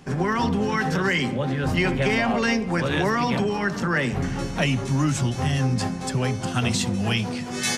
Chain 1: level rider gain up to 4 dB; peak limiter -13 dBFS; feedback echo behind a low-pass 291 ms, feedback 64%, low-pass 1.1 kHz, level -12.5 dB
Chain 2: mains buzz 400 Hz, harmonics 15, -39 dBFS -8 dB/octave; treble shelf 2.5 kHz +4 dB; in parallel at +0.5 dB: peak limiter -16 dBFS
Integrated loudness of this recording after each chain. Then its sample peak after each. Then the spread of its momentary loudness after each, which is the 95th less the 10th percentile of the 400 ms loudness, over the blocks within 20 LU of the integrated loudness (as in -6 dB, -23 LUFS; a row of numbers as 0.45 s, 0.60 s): -22.0 LUFS, -17.5 LUFS; -11.0 dBFS, -3.0 dBFS; 2 LU, 3 LU